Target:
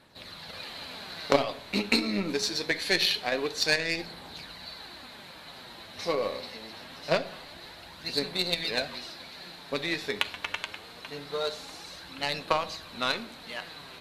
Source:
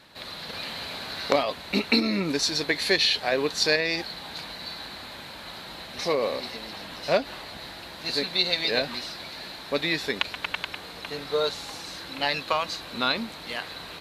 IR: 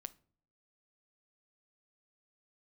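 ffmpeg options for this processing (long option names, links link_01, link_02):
-filter_complex "[0:a]flanger=delay=0.1:depth=9.8:regen=48:speed=0.24:shape=sinusoidal,aeval=exprs='0.398*(cos(1*acos(clip(val(0)/0.398,-1,1)))-cos(1*PI/2))+0.0282*(cos(7*acos(clip(val(0)/0.398,-1,1)))-cos(7*PI/2))':channel_layout=same[link_01];[1:a]atrim=start_sample=2205,asetrate=25578,aresample=44100[link_02];[link_01][link_02]afir=irnorm=-1:irlink=0,volume=6dB"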